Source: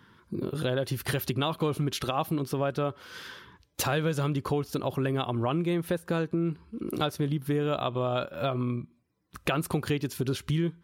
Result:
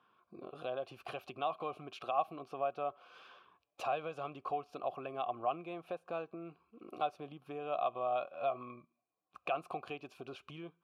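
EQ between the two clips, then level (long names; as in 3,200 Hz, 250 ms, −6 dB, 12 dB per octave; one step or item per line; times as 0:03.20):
formant filter a
+2.5 dB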